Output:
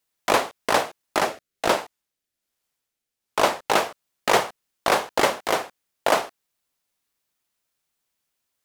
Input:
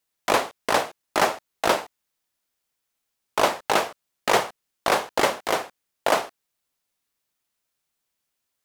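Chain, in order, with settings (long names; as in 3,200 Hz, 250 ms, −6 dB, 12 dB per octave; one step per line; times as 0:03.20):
0:01.19–0:03.70: rotating-speaker cabinet horn 1.2 Hz
level +1 dB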